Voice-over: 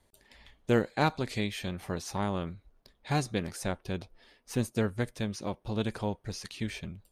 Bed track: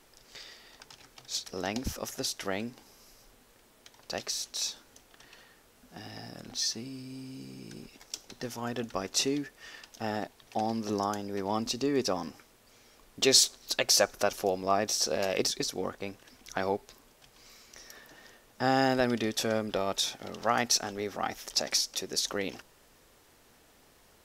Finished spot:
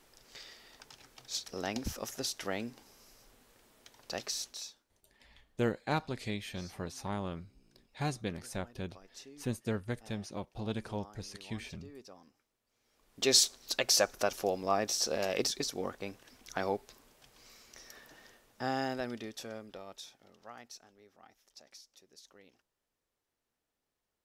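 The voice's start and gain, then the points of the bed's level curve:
4.90 s, -5.5 dB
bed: 4.45 s -3 dB
4.88 s -23 dB
12.66 s -23 dB
13.32 s -3 dB
18.12 s -3 dB
21.00 s -26.5 dB

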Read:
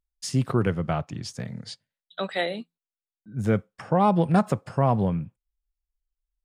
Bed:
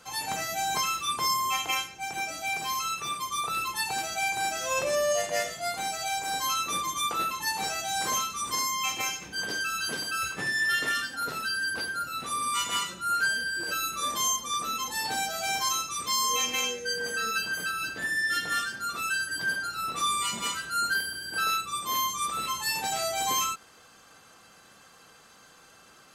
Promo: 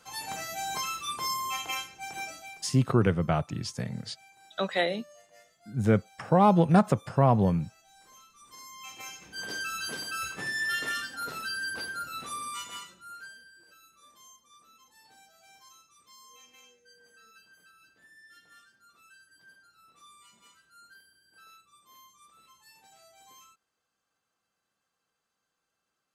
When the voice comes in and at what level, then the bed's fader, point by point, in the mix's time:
2.40 s, 0.0 dB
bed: 2.28 s -5 dB
2.83 s -28.5 dB
8.09 s -28.5 dB
9.52 s -4 dB
12.22 s -4 dB
13.76 s -28 dB

